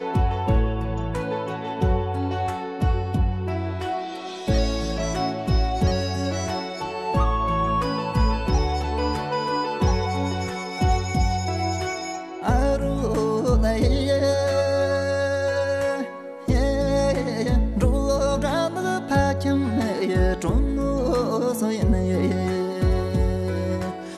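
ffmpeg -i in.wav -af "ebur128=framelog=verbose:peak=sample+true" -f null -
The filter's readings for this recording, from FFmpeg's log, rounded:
Integrated loudness:
  I:         -23.7 LUFS
  Threshold: -33.7 LUFS
Loudness range:
  LRA:         3.1 LU
  Threshold: -43.6 LUFS
  LRA low:   -25.4 LUFS
  LRA high:  -22.2 LUFS
Sample peak:
  Peak:       -8.5 dBFS
True peak:
  Peak:       -8.5 dBFS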